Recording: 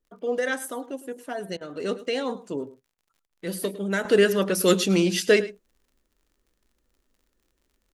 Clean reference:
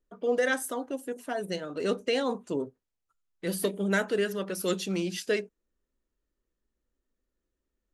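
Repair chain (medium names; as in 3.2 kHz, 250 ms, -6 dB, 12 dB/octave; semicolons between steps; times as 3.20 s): de-click; interpolate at 1.57/2.94/3.27 s, 38 ms; inverse comb 106 ms -17.5 dB; trim 0 dB, from 4.05 s -9.5 dB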